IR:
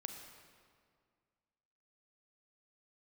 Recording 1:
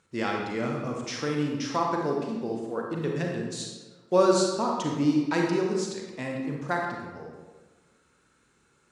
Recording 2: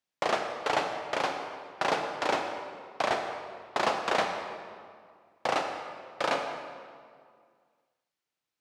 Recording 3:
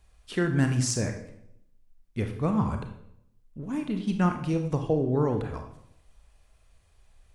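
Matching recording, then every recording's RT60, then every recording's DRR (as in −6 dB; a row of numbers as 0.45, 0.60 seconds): 2; 1.4, 2.0, 0.75 seconds; −0.5, 4.5, 5.0 decibels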